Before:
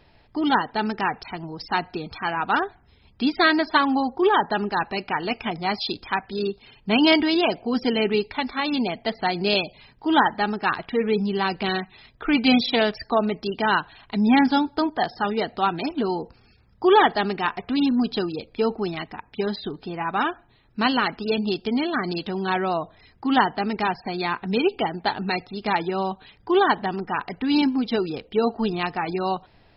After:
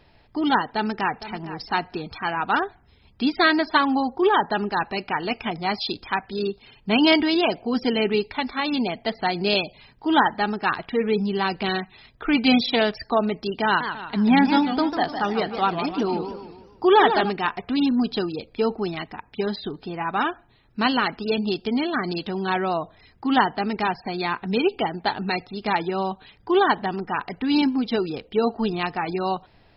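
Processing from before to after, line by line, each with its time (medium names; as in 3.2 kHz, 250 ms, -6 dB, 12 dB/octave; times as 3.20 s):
0.73–1.36 s: echo throw 460 ms, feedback 15%, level -14 dB
13.65–17.30 s: modulated delay 150 ms, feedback 45%, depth 215 cents, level -8.5 dB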